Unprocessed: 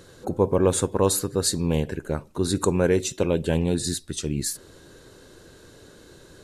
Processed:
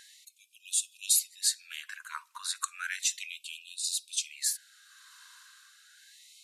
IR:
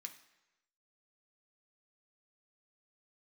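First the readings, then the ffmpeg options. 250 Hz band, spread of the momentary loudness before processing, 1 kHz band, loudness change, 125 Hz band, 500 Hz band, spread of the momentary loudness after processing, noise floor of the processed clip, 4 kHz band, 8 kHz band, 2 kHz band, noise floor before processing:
below −40 dB, 9 LU, −13.0 dB, −7.0 dB, below −40 dB, below −40 dB, 16 LU, −65 dBFS, −1.0 dB, −0.5 dB, −2.0 dB, −50 dBFS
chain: -af "tremolo=f=0.95:d=0.43,asubboost=boost=4:cutoff=160,afftfilt=real='re*gte(b*sr/1024,930*pow(2500/930,0.5+0.5*sin(2*PI*0.33*pts/sr)))':imag='im*gte(b*sr/1024,930*pow(2500/930,0.5+0.5*sin(2*PI*0.33*pts/sr)))':win_size=1024:overlap=0.75,volume=1.5dB"

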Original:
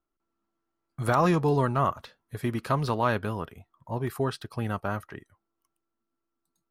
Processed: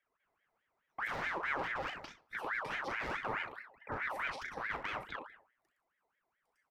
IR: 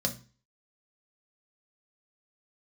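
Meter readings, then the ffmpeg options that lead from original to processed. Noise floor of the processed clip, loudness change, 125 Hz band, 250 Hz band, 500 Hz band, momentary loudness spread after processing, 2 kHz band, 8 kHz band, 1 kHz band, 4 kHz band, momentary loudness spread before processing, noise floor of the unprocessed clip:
−84 dBFS, −11.0 dB, −26.0 dB, −21.0 dB, −16.0 dB, 10 LU, +0.5 dB, −12.5 dB, −10.5 dB, −5.0 dB, 19 LU, −83 dBFS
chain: -filter_complex "[0:a]lowpass=frequency=3300:poles=1,asoftclip=type=hard:threshold=-27dB,acompressor=threshold=-36dB:ratio=6,asplit=2[link_01][link_02];[1:a]atrim=start_sample=2205[link_03];[link_02][link_03]afir=irnorm=-1:irlink=0,volume=-9.5dB[link_04];[link_01][link_04]amix=inputs=2:normalize=0,alimiter=level_in=3dB:limit=-24dB:level=0:latency=1:release=179,volume=-3dB,equalizer=frequency=300:width=1.5:gain=7.5,aecho=1:1:37|64:0.447|0.266,aeval=exprs='val(0)*sin(2*PI*1300*n/s+1300*0.5/4.7*sin(2*PI*4.7*n/s))':channel_layout=same,volume=-3dB"

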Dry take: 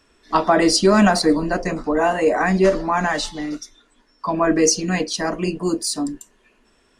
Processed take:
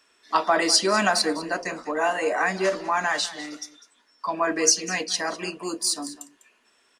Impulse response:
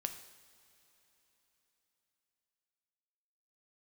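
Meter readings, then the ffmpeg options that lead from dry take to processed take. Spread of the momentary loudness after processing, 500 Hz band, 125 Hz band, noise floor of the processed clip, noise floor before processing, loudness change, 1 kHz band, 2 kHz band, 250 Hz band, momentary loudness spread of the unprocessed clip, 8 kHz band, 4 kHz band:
15 LU, −7.5 dB, −15.5 dB, −64 dBFS, −60 dBFS, −4.5 dB, −4.0 dB, −1.5 dB, −12.0 dB, 12 LU, 0.0 dB, 0.0 dB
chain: -af "highpass=frequency=1100:poles=1,aecho=1:1:200:0.15"

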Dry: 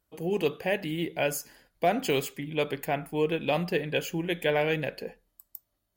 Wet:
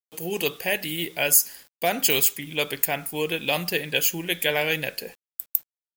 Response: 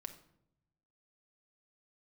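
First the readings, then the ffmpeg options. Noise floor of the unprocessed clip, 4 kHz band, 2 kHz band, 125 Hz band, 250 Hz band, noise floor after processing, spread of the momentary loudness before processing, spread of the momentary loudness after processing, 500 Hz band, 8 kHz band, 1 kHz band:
−79 dBFS, +9.5 dB, +6.5 dB, −2.0 dB, −1.5 dB, below −85 dBFS, 16 LU, 11 LU, −0.5 dB, +16.5 dB, +0.5 dB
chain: -af "crystalizer=i=7.5:c=0,acrusher=bits=7:mix=0:aa=0.000001,volume=-2dB"

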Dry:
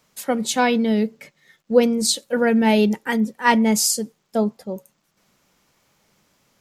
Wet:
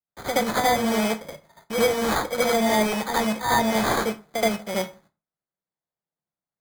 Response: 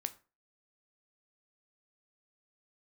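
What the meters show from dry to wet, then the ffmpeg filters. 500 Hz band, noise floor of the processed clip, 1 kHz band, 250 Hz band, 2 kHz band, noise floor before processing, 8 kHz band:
−2.5 dB, below −85 dBFS, +0.5 dB, −7.0 dB, −1.0 dB, −69 dBFS, −7.0 dB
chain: -filter_complex "[0:a]asoftclip=type=tanh:threshold=-13dB,equalizer=frequency=4100:width_type=o:width=0.46:gain=-11.5,acrusher=bits=2:mode=log:mix=0:aa=0.000001,highpass=120,equalizer=frequency=160:width_type=q:width=4:gain=5,equalizer=frequency=250:width_type=q:width=4:gain=-9,equalizer=frequency=410:width_type=q:width=4:gain=-3,equalizer=frequency=710:width_type=q:width=4:gain=6,equalizer=frequency=1700:width_type=q:width=4:gain=-7,equalizer=frequency=4200:width_type=q:width=4:gain=5,lowpass=frequency=8000:width=0.5412,lowpass=frequency=8000:width=1.3066,agate=range=-39dB:threshold=-57dB:ratio=16:detection=peak,acrusher=samples=16:mix=1:aa=0.000001,acrossover=split=460|1000[link_01][link_02][link_03];[link_01]acompressor=threshold=-35dB:ratio=4[link_04];[link_02]acompressor=threshold=-31dB:ratio=4[link_05];[link_03]acompressor=threshold=-32dB:ratio=4[link_06];[link_04][link_05][link_06]amix=inputs=3:normalize=0,asplit=2[link_07][link_08];[1:a]atrim=start_sample=2205,adelay=75[link_09];[link_08][link_09]afir=irnorm=-1:irlink=0,volume=7dB[link_10];[link_07][link_10]amix=inputs=2:normalize=0"

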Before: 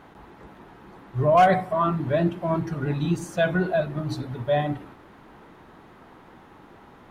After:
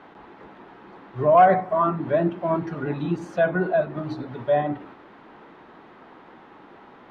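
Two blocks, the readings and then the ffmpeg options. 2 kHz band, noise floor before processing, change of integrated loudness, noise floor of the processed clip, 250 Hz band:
−0.5 dB, −50 dBFS, +1.5 dB, −49 dBFS, −0.5 dB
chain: -filter_complex "[0:a]acrossover=split=190 4800:gain=0.224 1 0.1[link_01][link_02][link_03];[link_01][link_02][link_03]amix=inputs=3:normalize=0,acrossover=split=1900[link_04][link_05];[link_05]acompressor=threshold=-52dB:ratio=4[link_06];[link_04][link_06]amix=inputs=2:normalize=0,volume=2.5dB"

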